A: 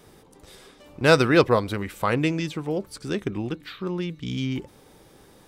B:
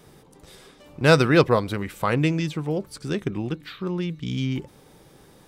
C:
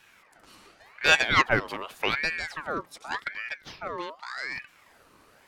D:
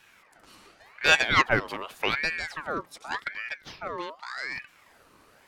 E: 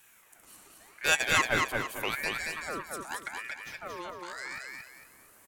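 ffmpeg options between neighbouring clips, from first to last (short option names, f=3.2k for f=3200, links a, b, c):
-af "equalizer=f=150:w=3.2:g=5.5"
-af "bass=f=250:g=-11,treble=f=4k:g=-4,aeval=exprs='val(0)*sin(2*PI*1400*n/s+1400*0.5/0.87*sin(2*PI*0.87*n/s))':c=same"
-af anull
-filter_complex "[0:a]aexciter=amount=6.1:drive=3.8:freq=6.7k,asplit=2[a][b];[b]aecho=0:1:227|454|681|908:0.708|0.227|0.0725|0.0232[c];[a][c]amix=inputs=2:normalize=0,volume=-6dB"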